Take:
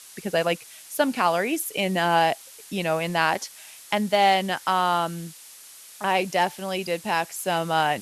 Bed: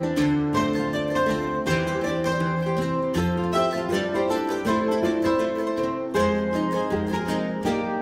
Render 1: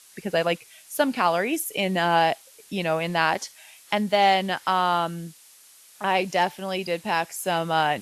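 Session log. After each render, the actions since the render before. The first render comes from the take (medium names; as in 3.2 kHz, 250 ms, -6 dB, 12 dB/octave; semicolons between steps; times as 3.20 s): noise print and reduce 6 dB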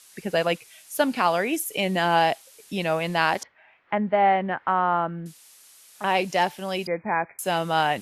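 3.43–5.26 s: low-pass 2 kHz 24 dB/octave; 6.87–7.39 s: brick-wall FIR low-pass 2.5 kHz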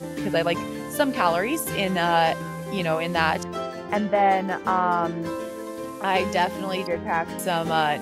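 add bed -8.5 dB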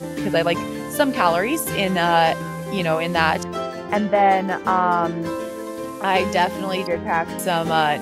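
trim +3.5 dB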